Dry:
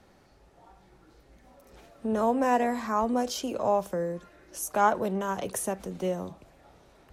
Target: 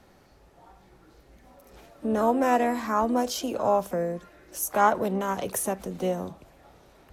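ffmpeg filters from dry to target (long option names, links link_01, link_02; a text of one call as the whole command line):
ffmpeg -i in.wav -filter_complex "[0:a]asplit=2[link_01][link_02];[link_02]asetrate=58866,aresample=44100,atempo=0.749154,volume=-14dB[link_03];[link_01][link_03]amix=inputs=2:normalize=0,equalizer=frequency=12000:width=5.4:gain=7,volume=2dB" out.wav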